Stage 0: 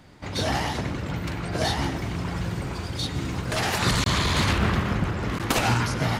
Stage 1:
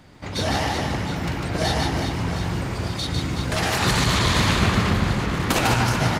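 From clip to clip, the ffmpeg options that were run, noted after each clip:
ffmpeg -i in.wav -af "aecho=1:1:150|375|712.5|1219|1978:0.631|0.398|0.251|0.158|0.1,volume=1.5dB" out.wav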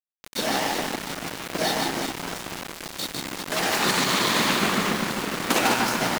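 ffmpeg -i in.wav -af "highpass=frequency=200:width=0.5412,highpass=frequency=200:width=1.3066,aeval=exprs='val(0)*gte(abs(val(0)),0.0531)':channel_layout=same" out.wav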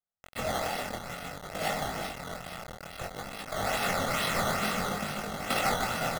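ffmpeg -i in.wav -af "acrusher=samples=12:mix=1:aa=0.000001:lfo=1:lforange=12:lforate=2.3,flanger=delay=19.5:depth=4.8:speed=0.57,aecho=1:1:1.5:0.62,volume=-5dB" out.wav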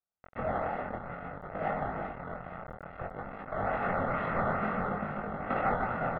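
ffmpeg -i in.wav -af "lowpass=frequency=1700:width=0.5412,lowpass=frequency=1700:width=1.3066" out.wav

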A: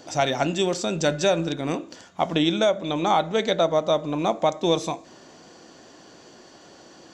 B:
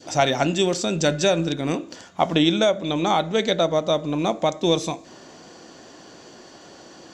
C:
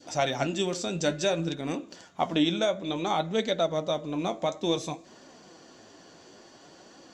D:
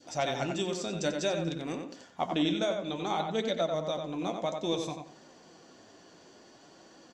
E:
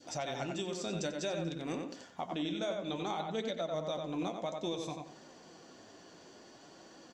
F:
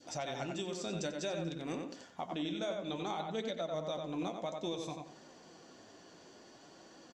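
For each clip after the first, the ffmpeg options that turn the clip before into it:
ffmpeg -i in.wav -af "adynamicequalizer=threshold=0.0178:dfrequency=900:dqfactor=0.76:tfrequency=900:tqfactor=0.76:attack=5:release=100:ratio=0.375:range=2.5:mode=cutabove:tftype=bell,volume=3.5dB" out.wav
ffmpeg -i in.wav -af "flanger=delay=3.3:depth=8.9:regen=55:speed=0.57:shape=triangular,volume=-3dB" out.wav
ffmpeg -i in.wav -filter_complex "[0:a]asplit=2[link_01][link_02];[link_02]adelay=91,lowpass=frequency=3300:poles=1,volume=-5dB,asplit=2[link_03][link_04];[link_04]adelay=91,lowpass=frequency=3300:poles=1,volume=0.28,asplit=2[link_05][link_06];[link_06]adelay=91,lowpass=frequency=3300:poles=1,volume=0.28,asplit=2[link_07][link_08];[link_08]adelay=91,lowpass=frequency=3300:poles=1,volume=0.28[link_09];[link_01][link_03][link_05][link_07][link_09]amix=inputs=5:normalize=0,volume=-4.5dB" out.wav
ffmpeg -i in.wav -af "alimiter=level_in=2dB:limit=-24dB:level=0:latency=1:release=388,volume=-2dB" out.wav
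ffmpeg -i in.wav -af "aresample=32000,aresample=44100,volume=-1.5dB" out.wav

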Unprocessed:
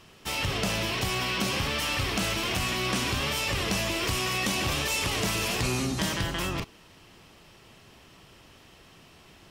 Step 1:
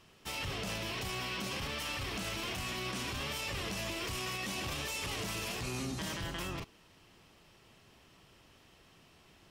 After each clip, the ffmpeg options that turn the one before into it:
ffmpeg -i in.wav -af "alimiter=limit=-21dB:level=0:latency=1:release=13,volume=-8dB" out.wav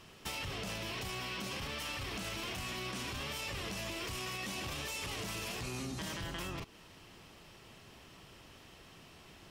ffmpeg -i in.wav -af "acompressor=threshold=-44dB:ratio=4,volume=5.5dB" out.wav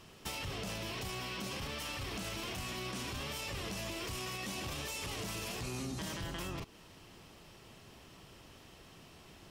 ffmpeg -i in.wav -af "equalizer=frequency=2100:width=0.64:gain=-3,volume=1dB" out.wav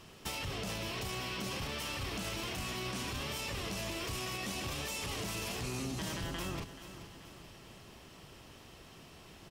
ffmpeg -i in.wav -af "aecho=1:1:431|862|1293|1724|2155:0.237|0.114|0.0546|0.0262|0.0126,volume=1.5dB" out.wav

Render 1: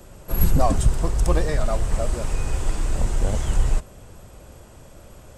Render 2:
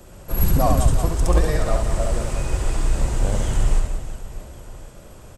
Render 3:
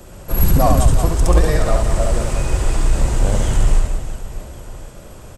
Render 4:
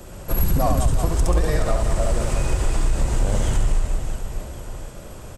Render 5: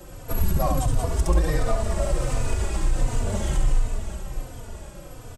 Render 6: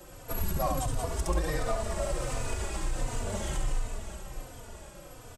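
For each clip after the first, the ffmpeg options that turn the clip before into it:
ffmpeg -i in.wav -af "aecho=1:1:70|182|361.2|647.9|1107:0.631|0.398|0.251|0.158|0.1" out.wav
ffmpeg -i in.wav -af "asoftclip=type=tanh:threshold=-5.5dB,volume=5dB" out.wav
ffmpeg -i in.wav -af "acompressor=threshold=-16dB:ratio=3" out.wav
ffmpeg -i in.wav -filter_complex "[0:a]asplit=2[link_01][link_02];[link_02]adelay=3.3,afreqshift=-1.4[link_03];[link_01][link_03]amix=inputs=2:normalize=1" out.wav
ffmpeg -i in.wav -af "lowshelf=frequency=310:gain=-7,volume=-3dB" out.wav

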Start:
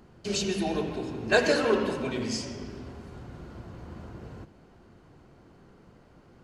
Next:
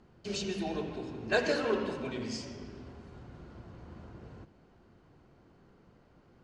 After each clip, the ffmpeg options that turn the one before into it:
ffmpeg -i in.wav -af "lowpass=6700,volume=-6dB" out.wav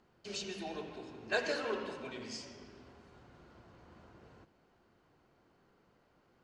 ffmpeg -i in.wav -af "lowshelf=frequency=330:gain=-10.5,volume=-3dB" out.wav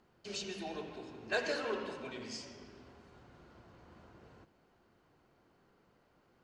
ffmpeg -i in.wav -af "asoftclip=type=tanh:threshold=-21dB" out.wav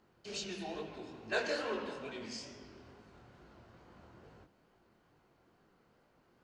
ffmpeg -i in.wav -af "flanger=delay=18.5:depth=7.8:speed=2.3,volume=3dB" out.wav

